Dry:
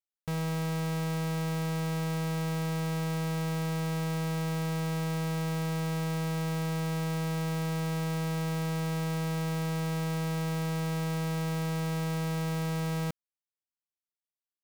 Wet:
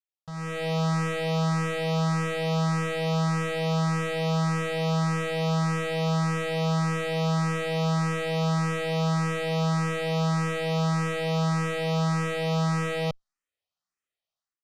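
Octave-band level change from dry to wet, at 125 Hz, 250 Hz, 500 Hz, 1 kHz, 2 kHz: +4.0, +4.0, +8.0, +8.0, +7.5 dB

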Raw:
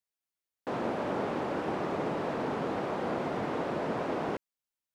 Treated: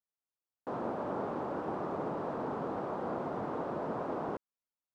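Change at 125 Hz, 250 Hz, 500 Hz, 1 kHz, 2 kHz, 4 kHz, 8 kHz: -4.5 dB, -4.5 dB, -4.0 dB, -3.0 dB, -9.0 dB, under -10 dB, n/a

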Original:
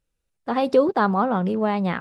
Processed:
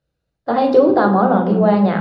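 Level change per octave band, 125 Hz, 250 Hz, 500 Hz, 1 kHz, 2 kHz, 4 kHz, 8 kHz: +7.5 dB, +8.0 dB, +7.0 dB, +6.0 dB, +3.5 dB, +1.5 dB, n/a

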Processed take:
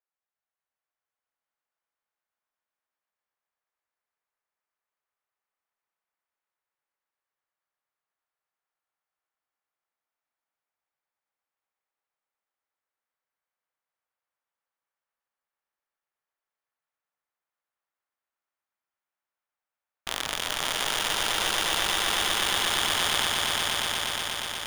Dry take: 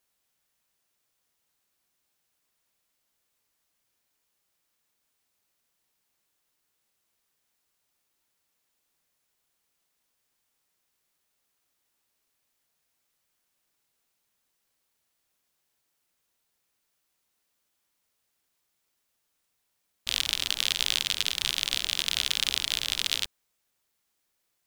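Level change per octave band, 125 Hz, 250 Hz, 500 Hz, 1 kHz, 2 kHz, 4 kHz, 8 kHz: +7.5, +11.0, +16.0, +16.5, +6.5, +1.0, +3.5 dB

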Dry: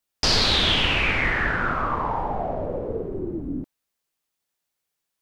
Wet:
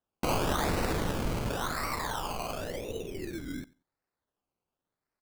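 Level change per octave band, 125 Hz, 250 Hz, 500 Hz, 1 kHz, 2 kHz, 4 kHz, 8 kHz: -5.0 dB, -5.0 dB, -5.5 dB, -7.5 dB, -14.0 dB, -17.5 dB, n/a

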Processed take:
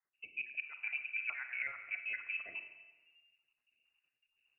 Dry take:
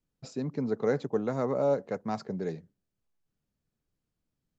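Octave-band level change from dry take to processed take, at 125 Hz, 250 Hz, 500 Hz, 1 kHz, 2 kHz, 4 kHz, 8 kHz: under -40 dB, under -40 dB, -37.5 dB, -18.5 dB, +10.0 dB, -3.5 dB, n/a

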